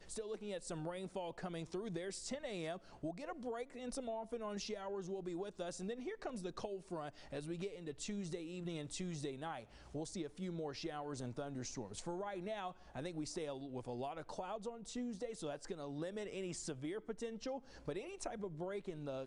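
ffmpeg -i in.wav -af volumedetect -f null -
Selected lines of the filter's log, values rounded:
mean_volume: -44.5 dB
max_volume: -28.7 dB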